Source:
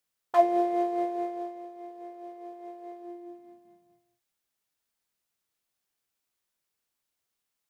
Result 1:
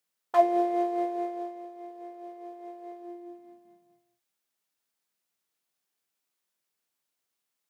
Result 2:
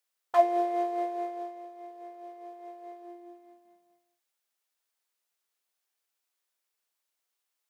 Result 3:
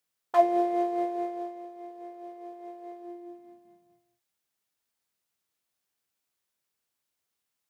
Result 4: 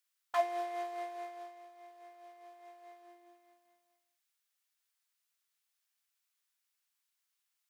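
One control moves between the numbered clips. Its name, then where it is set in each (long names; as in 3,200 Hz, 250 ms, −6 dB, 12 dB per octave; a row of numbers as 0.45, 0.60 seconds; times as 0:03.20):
high-pass filter, corner frequency: 140, 440, 48, 1,200 Hertz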